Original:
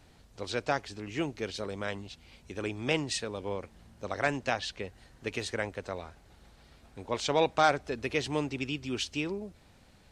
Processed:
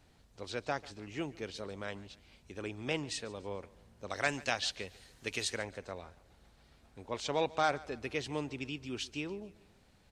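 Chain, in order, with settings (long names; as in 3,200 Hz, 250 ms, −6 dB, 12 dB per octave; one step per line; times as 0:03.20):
0:04.10–0:05.58: high-shelf EQ 2,300 Hz +11.5 dB
repeating echo 143 ms, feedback 45%, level −21 dB
level −6 dB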